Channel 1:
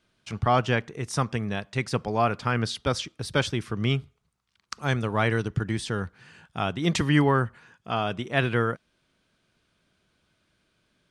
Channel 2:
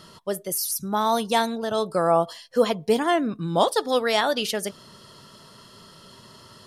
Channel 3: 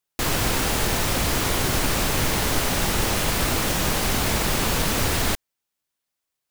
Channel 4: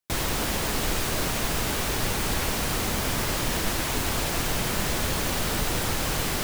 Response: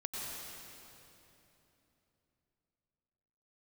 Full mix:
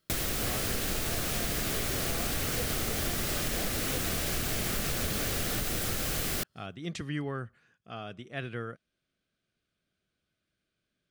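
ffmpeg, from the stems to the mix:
-filter_complex "[0:a]volume=-12.5dB,asplit=2[link_01][link_02];[1:a]volume=-15.5dB[link_03];[2:a]adelay=250,volume=-6.5dB[link_04];[3:a]highshelf=frequency=10000:gain=6.5,volume=-0.5dB[link_05];[link_02]apad=whole_len=293860[link_06];[link_03][link_06]sidechaingate=range=-15dB:threshold=-56dB:ratio=16:detection=peak[link_07];[link_01][link_07][link_04][link_05]amix=inputs=4:normalize=0,equalizer=frequency=940:width=4.8:gain=-12.5,acompressor=threshold=-28dB:ratio=6"

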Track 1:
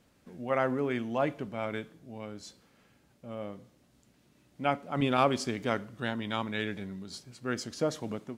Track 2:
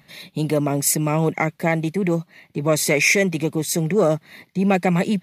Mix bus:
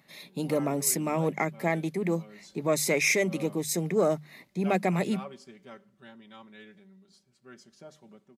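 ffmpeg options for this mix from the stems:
ffmpeg -i stem1.wav -i stem2.wav -filter_complex "[0:a]aecho=1:1:5.2:0.89,volume=-6.5dB,afade=type=in:start_time=2.16:duration=0.33:silence=0.316228,afade=type=out:start_time=4.33:duration=0.44:silence=0.223872[link_01];[1:a]highpass=150,equalizer=frequency=2900:width_type=o:width=0.77:gain=-3,volume=-6.5dB[link_02];[link_01][link_02]amix=inputs=2:normalize=0,bandreject=frequency=50:width_type=h:width=6,bandreject=frequency=100:width_type=h:width=6,bandreject=frequency=150:width_type=h:width=6,bandreject=frequency=200:width_type=h:width=6" out.wav

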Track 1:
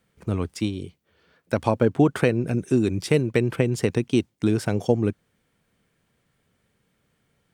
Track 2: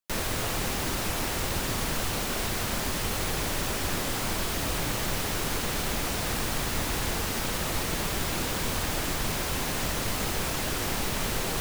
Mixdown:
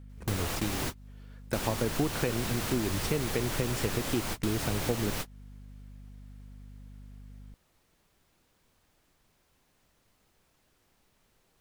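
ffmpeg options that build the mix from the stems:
ffmpeg -i stem1.wav -i stem2.wav -filter_complex "[0:a]equalizer=frequency=72:width_type=o:width=0.37:gain=12.5,aeval=exprs='val(0)+0.00562*(sin(2*PI*50*n/s)+sin(2*PI*2*50*n/s)/2+sin(2*PI*3*50*n/s)/3+sin(2*PI*4*50*n/s)/4+sin(2*PI*5*50*n/s)/5)':channel_layout=same,volume=-1.5dB,asplit=2[link_01][link_02];[1:a]volume=2.5dB[link_03];[link_02]apad=whole_len=511630[link_04];[link_03][link_04]sidechaingate=range=-43dB:threshold=-36dB:ratio=16:detection=peak[link_05];[link_01][link_05]amix=inputs=2:normalize=0,acompressor=threshold=-33dB:ratio=2" out.wav

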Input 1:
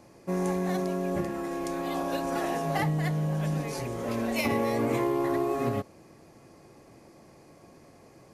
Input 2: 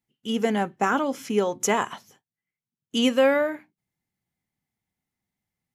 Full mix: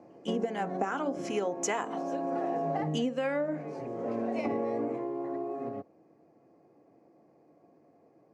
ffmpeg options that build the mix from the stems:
ffmpeg -i stem1.wav -i stem2.wav -filter_complex "[0:a]lowpass=frequency=1100:poles=1,volume=-2.5dB,afade=type=out:start_time=4.64:duration=0.33:silence=0.354813[link_01];[1:a]bandreject=frequency=75.15:width_type=h:width=4,bandreject=frequency=150.3:width_type=h:width=4,bandreject=frequency=225.45:width_type=h:width=4,bandreject=frequency=300.6:width_type=h:width=4,bandreject=frequency=375.75:width_type=h:width=4,bandreject=frequency=450.9:width_type=h:width=4,bandreject=frequency=526.05:width_type=h:width=4,bandreject=frequency=601.2:width_type=h:width=4,bandreject=frequency=676.35:width_type=h:width=4,bandreject=frequency=751.5:width_type=h:width=4,bandreject=frequency=826.65:width_type=h:width=4,bandreject=frequency=901.8:width_type=h:width=4,bandreject=frequency=976.95:width_type=h:width=4,bandreject=frequency=1052.1:width_type=h:width=4,bandreject=frequency=1127.25:width_type=h:width=4,bandreject=frequency=1202.4:width_type=h:width=4,bandreject=frequency=1277.55:width_type=h:width=4,bandreject=frequency=1352.7:width_type=h:width=4,bandreject=frequency=1427.85:width_type=h:width=4,bandreject=frequency=1503:width_type=h:width=4,acrossover=split=870[link_02][link_03];[link_02]aeval=exprs='val(0)*(1-0.7/2+0.7/2*cos(2*PI*2.6*n/s))':channel_layout=same[link_04];[link_03]aeval=exprs='val(0)*(1-0.7/2-0.7/2*cos(2*PI*2.6*n/s))':channel_layout=same[link_05];[link_04][link_05]amix=inputs=2:normalize=0,volume=0dB,asplit=2[link_06][link_07];[link_07]apad=whole_len=367373[link_08];[link_01][link_08]sidechaincompress=threshold=-27dB:ratio=8:attack=16:release=1380[link_09];[link_09][link_06]amix=inputs=2:normalize=0,highpass=frequency=110:width=0.5412,highpass=frequency=110:width=1.3066,equalizer=frequency=120:width_type=q:width=4:gain=-5,equalizer=frequency=300:width_type=q:width=4:gain=7,equalizer=frequency=470:width_type=q:width=4:gain=6,equalizer=frequency=710:width_type=q:width=4:gain=8,equalizer=frequency=3500:width_type=q:width=4:gain=-6,lowpass=frequency=8500:width=0.5412,lowpass=frequency=8500:width=1.3066,acompressor=threshold=-27dB:ratio=12" out.wav

